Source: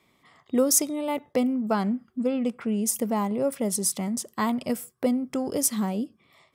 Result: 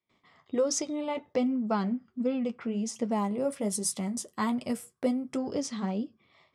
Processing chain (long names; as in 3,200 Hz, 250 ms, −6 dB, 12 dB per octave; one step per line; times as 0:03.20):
low-pass filter 6,400 Hz 24 dB per octave, from 0:03.11 11,000 Hz, from 0:05.37 5,800 Hz
noise gate with hold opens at −54 dBFS
flanger 1.3 Hz, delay 8.1 ms, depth 4 ms, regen −44%